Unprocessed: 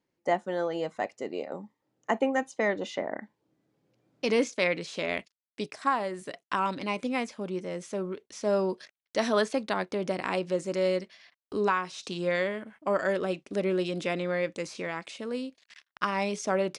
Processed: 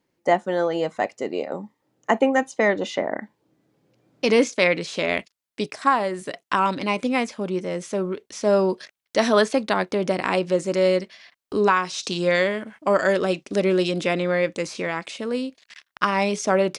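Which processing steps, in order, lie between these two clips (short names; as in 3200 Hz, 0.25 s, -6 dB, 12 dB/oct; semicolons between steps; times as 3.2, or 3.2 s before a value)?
11.76–13.92 bell 5800 Hz +5.5 dB 1.4 oct; gain +7.5 dB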